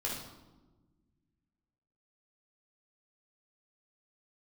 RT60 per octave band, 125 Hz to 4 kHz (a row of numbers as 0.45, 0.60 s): 2.5, 2.1, 1.4, 1.1, 0.75, 0.75 s